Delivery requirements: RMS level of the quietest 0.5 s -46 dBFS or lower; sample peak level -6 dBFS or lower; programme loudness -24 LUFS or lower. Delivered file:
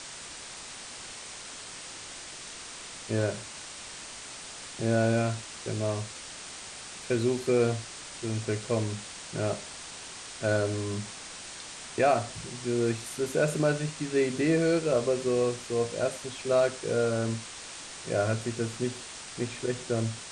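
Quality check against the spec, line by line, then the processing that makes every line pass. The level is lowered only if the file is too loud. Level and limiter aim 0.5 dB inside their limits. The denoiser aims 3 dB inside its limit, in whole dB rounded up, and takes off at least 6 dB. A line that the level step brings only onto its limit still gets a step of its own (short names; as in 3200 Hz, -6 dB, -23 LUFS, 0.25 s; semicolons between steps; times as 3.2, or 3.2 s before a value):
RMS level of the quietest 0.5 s -43 dBFS: fail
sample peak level -12.5 dBFS: OK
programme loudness -31.0 LUFS: OK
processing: denoiser 6 dB, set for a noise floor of -43 dBFS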